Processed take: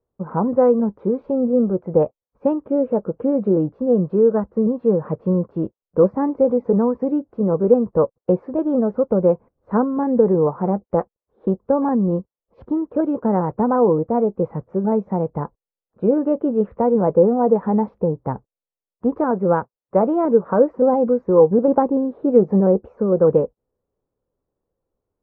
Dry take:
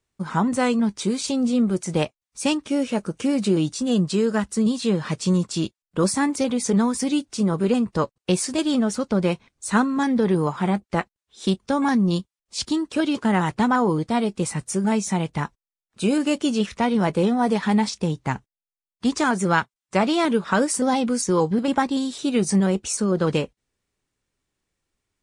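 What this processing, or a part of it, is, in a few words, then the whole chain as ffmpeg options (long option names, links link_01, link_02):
under water: -filter_complex "[0:a]asettb=1/sr,asplit=3[link_01][link_02][link_03];[link_01]atrim=end=21.514[link_04];[link_02]atrim=start=21.51:end=22.88,asetpts=PTS-STARTPTS,afade=type=in:duration=0.004:curve=qsin,afade=type=out:start_time=1.366:duration=0.004:curve=qsin,equalizer=frequency=410:width_type=o:width=2.4:gain=3[link_05];[link_03]atrim=start=22.876[link_06];[link_04][link_05]acrossfade=duration=0.004:curve1=hsin:curve2=qsin[link_07];[link_07][link_06]acrossfade=duration=0.004:curve1=qsin:curve2=hsin,lowpass=frequency=1100:width=0.5412,lowpass=frequency=1100:width=1.3066,equalizer=frequency=500:width_type=o:width=0.56:gain=11.5"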